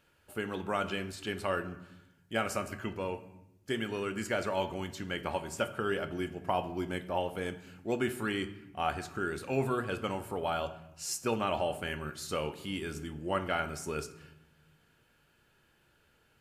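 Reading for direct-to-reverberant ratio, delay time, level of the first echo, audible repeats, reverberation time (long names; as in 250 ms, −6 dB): 8.5 dB, no echo audible, no echo audible, no echo audible, 0.85 s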